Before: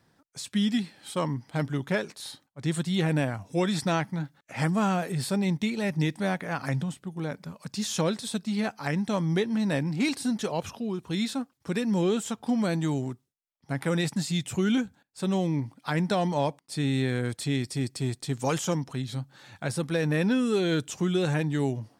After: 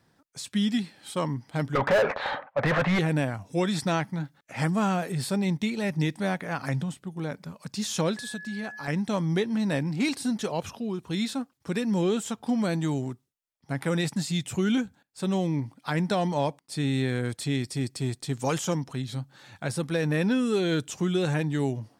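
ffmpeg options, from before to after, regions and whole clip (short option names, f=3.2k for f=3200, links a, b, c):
-filter_complex "[0:a]asettb=1/sr,asplit=3[a][b][c];[a]atrim=end=1.754[d];[b]atrim=start=1.75:end=2.99,asetpts=PTS-STARTPTS,afade=t=in:d=0.004:c=qsin,afade=t=out:st=1.236:d=0.004:c=qsin,lowpass=f=2.2k:w=0.5412,lowpass=f=2.2k:w=1.3066,lowshelf=f=440:t=q:w=3:g=-7.5,asplit=2[e][f];[f]highpass=f=720:p=1,volume=38dB,asoftclip=type=tanh:threshold=-13dB[g];[e][g]amix=inputs=2:normalize=0,lowpass=f=1.3k:p=1,volume=-6dB[h];[c]atrim=start=2.986[i];[d][h]acrossfade=d=0.004:c1=hsin:c2=qsin[j];[j][i]acrossfade=d=0.004:c1=qsin:c2=hsin,asettb=1/sr,asplit=3[k][l][m];[k]atrim=end=8.174[n];[l]atrim=start=8.17:end=8.88,asetpts=PTS-STARTPTS,afade=t=in:d=0.004:c=qsin,afade=t=out:st=0.706:d=0.004:c=qsin,acompressor=threshold=-36dB:ratio=2:attack=3.2:release=140:knee=1:detection=peak,aeval=exprs='val(0)+0.0112*sin(2*PI*1700*n/s)':c=same[o];[m]atrim=start=8.876[p];[n][o]acrossfade=d=0.004:c1=hsin:c2=qsin[q];[q][p]acrossfade=d=0.004:c1=qsin:c2=hsin"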